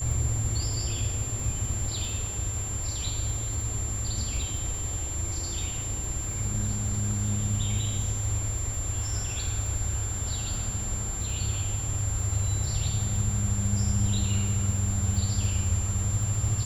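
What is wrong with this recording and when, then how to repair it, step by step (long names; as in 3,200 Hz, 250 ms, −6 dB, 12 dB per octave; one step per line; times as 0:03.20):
surface crackle 27 per second −34 dBFS
whistle 7,300 Hz −33 dBFS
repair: click removal
notch filter 7,300 Hz, Q 30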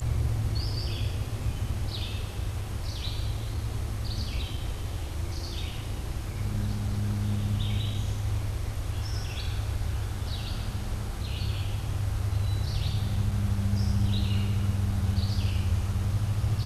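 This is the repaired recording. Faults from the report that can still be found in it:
none of them is left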